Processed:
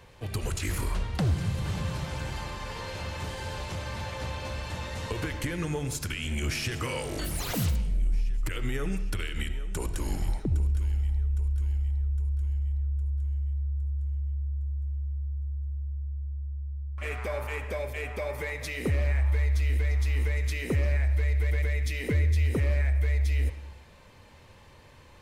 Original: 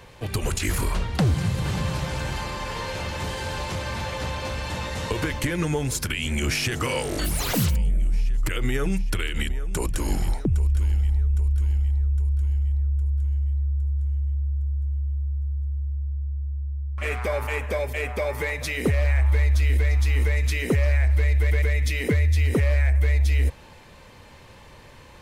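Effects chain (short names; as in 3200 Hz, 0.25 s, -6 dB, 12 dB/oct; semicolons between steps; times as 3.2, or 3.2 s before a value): bell 86 Hz +4 dB 0.78 oct; on a send: reverb RT60 0.85 s, pre-delay 25 ms, DRR 10 dB; on the sum: gain -7 dB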